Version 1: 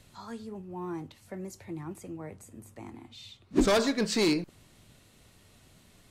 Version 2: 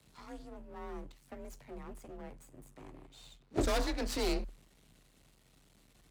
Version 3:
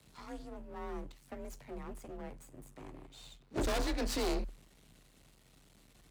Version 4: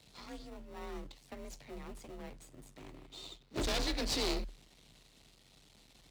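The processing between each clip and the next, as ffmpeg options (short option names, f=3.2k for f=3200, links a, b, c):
-af "aeval=exprs='max(val(0),0)':c=same,afreqshift=38,volume=-3.5dB"
-af "volume=31.5dB,asoftclip=hard,volume=-31.5dB,volume=2dB"
-filter_complex "[0:a]equalizer=f=4.1k:w=0.67:g=11.5,asplit=2[a][b];[b]acrusher=samples=27:mix=1:aa=0.000001,volume=-7.5dB[c];[a][c]amix=inputs=2:normalize=0,volume=-5dB"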